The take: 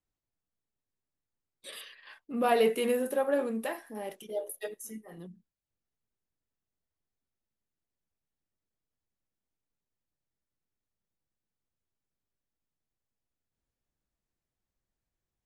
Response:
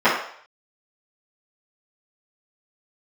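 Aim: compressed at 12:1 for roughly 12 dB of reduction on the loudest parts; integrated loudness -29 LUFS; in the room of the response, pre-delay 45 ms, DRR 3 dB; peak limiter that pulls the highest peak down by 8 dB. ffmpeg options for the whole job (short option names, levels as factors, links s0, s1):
-filter_complex "[0:a]acompressor=threshold=0.0251:ratio=12,alimiter=level_in=2.51:limit=0.0631:level=0:latency=1,volume=0.398,asplit=2[s0][s1];[1:a]atrim=start_sample=2205,adelay=45[s2];[s1][s2]afir=irnorm=-1:irlink=0,volume=0.0473[s3];[s0][s3]amix=inputs=2:normalize=0,volume=3.76"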